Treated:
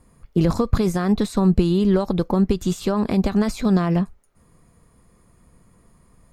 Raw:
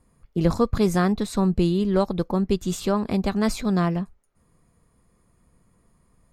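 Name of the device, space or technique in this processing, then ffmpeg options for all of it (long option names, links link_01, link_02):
de-esser from a sidechain: -filter_complex "[0:a]asplit=2[link_01][link_02];[link_02]highpass=frequency=5500:poles=1,apad=whole_len=278823[link_03];[link_01][link_03]sidechaincompress=threshold=-42dB:ratio=8:attack=3.5:release=66,volume=7dB"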